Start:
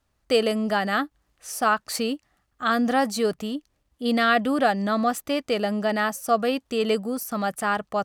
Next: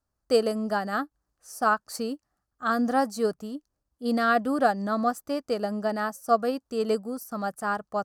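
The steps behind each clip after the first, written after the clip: band shelf 2700 Hz -10.5 dB 1.2 oct; upward expander 1.5:1, over -36 dBFS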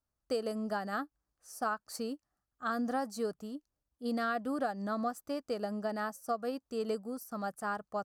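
compressor, threshold -23 dBFS, peak gain reduction 8 dB; gain -6.5 dB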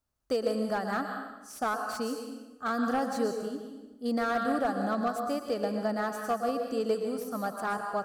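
plate-style reverb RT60 1.1 s, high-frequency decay 0.85×, pre-delay 0.105 s, DRR 4 dB; slew limiter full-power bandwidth 39 Hz; gain +4 dB

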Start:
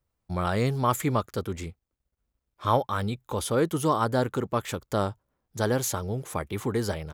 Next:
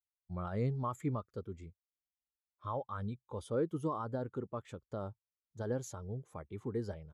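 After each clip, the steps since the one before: limiter -16 dBFS, peak gain reduction 7 dB; LPF 10000 Hz 12 dB/oct; spectral expander 1.5:1; gain -7.5 dB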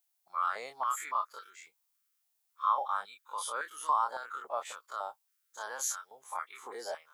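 spectral dilation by 60 ms; tilt +4 dB/oct; stepped high-pass 3.6 Hz 710–1600 Hz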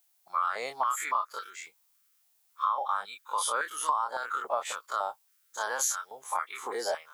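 compressor 6:1, threshold -34 dBFS, peak gain reduction 11 dB; gain +9 dB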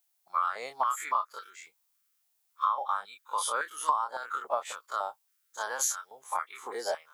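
upward expander 1.5:1, over -38 dBFS; gain +2 dB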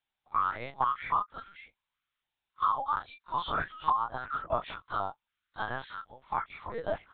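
LPC vocoder at 8 kHz pitch kept

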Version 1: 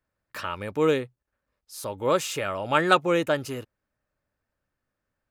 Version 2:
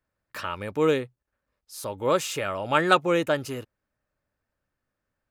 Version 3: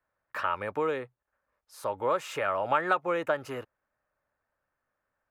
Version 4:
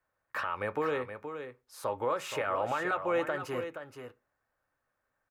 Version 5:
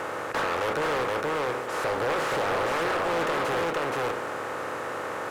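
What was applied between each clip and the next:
nothing audible
compressor 6:1, threshold -25 dBFS, peak gain reduction 11.5 dB; three-band isolator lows -13 dB, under 550 Hz, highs -16 dB, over 2000 Hz; gain +5.5 dB
limiter -22 dBFS, peak gain reduction 10 dB; echo 0.473 s -9 dB; on a send at -9.5 dB: reverb RT60 0.25 s, pre-delay 3 ms
per-bin compression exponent 0.2; overloaded stage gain 23 dB; Doppler distortion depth 0.37 ms

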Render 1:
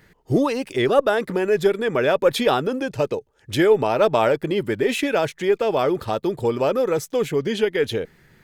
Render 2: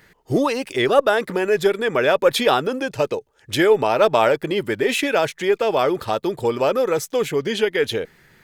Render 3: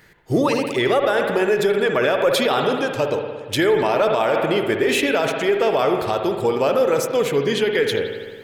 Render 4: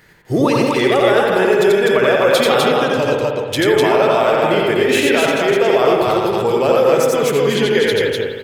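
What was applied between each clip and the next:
low shelf 420 Hz -7 dB; gain +4 dB
spring tank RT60 1.6 s, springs 57 ms, chirp 30 ms, DRR 5 dB; limiter -10 dBFS, peak gain reduction 8.5 dB; gain +1 dB
loudspeakers at several distances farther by 30 m -2 dB, 86 m -2 dB; gain +1.5 dB

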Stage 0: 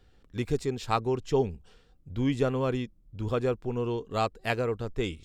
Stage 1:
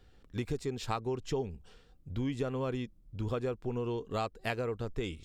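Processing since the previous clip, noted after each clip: compressor 4:1, threshold -31 dBFS, peak gain reduction 9.5 dB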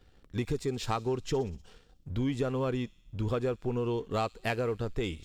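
sample leveller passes 1; thin delay 61 ms, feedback 70%, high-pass 4100 Hz, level -16 dB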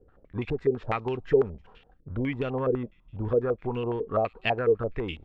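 stepped low-pass 12 Hz 460–2800 Hz

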